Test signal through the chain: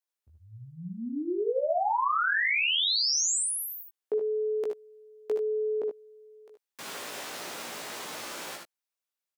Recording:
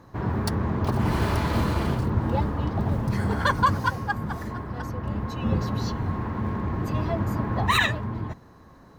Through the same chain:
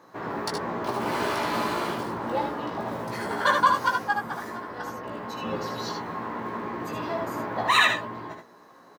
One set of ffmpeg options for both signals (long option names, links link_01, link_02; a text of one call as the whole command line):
ffmpeg -i in.wav -filter_complex "[0:a]acrossover=split=9800[link_01][link_02];[link_02]acompressor=threshold=-49dB:ratio=4:attack=1:release=60[link_03];[link_01][link_03]amix=inputs=2:normalize=0,highpass=370,asplit=2[link_04][link_05];[link_05]adelay=17,volume=-4.5dB[link_06];[link_04][link_06]amix=inputs=2:normalize=0,aecho=1:1:64|76:0.282|0.531" out.wav